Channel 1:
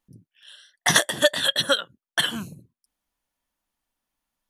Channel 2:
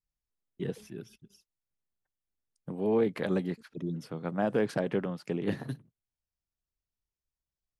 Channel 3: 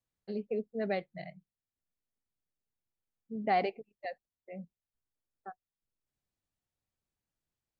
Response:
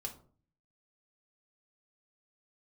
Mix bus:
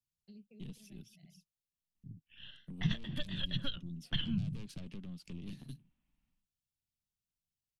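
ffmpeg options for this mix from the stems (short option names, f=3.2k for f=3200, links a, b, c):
-filter_complex "[0:a]aeval=exprs='if(lt(val(0),0),0.708*val(0),val(0))':c=same,dynaudnorm=f=180:g=3:m=13dB,lowpass=f=2.2k:w=0.5412,lowpass=f=2.2k:w=1.3066,adelay=1950,volume=-1dB[a];[1:a]highpass=180,acompressor=threshold=-36dB:ratio=1.5,aeval=exprs='(tanh(44.7*val(0)+0.65)-tanh(0.65))/44.7':c=same,volume=1.5dB,asplit=2[b][c];[2:a]acompressor=threshold=-47dB:ratio=2,volume=-4.5dB[d];[c]apad=whole_len=343742[e];[d][e]sidechaincompress=threshold=-52dB:ratio=8:attack=16:release=339[f];[a][b][f]amix=inputs=3:normalize=0,firequalizer=gain_entry='entry(170,0);entry(440,-19);entry(1700,-18);entry(2700,-2)':delay=0.05:min_phase=1,acrossover=split=210|3000[g][h][i];[h]acompressor=threshold=-52dB:ratio=2.5[j];[g][j][i]amix=inputs=3:normalize=0"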